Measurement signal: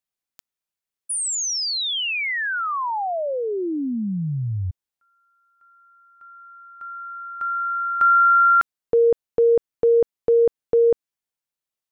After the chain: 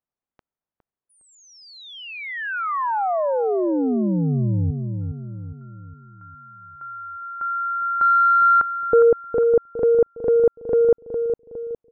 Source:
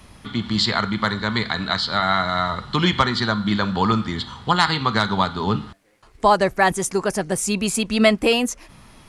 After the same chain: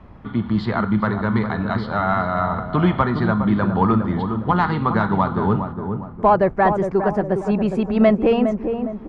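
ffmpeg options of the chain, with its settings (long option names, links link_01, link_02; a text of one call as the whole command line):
ffmpeg -i in.wav -filter_complex "[0:a]acontrast=67,lowpass=1200,asplit=2[link_01][link_02];[link_02]adelay=410,lowpass=frequency=920:poles=1,volume=-6dB,asplit=2[link_03][link_04];[link_04]adelay=410,lowpass=frequency=920:poles=1,volume=0.48,asplit=2[link_05][link_06];[link_06]adelay=410,lowpass=frequency=920:poles=1,volume=0.48,asplit=2[link_07][link_08];[link_08]adelay=410,lowpass=frequency=920:poles=1,volume=0.48,asplit=2[link_09][link_10];[link_10]adelay=410,lowpass=frequency=920:poles=1,volume=0.48,asplit=2[link_11][link_12];[link_12]adelay=410,lowpass=frequency=920:poles=1,volume=0.48[link_13];[link_01][link_03][link_05][link_07][link_09][link_11][link_13]amix=inputs=7:normalize=0,volume=-3dB" out.wav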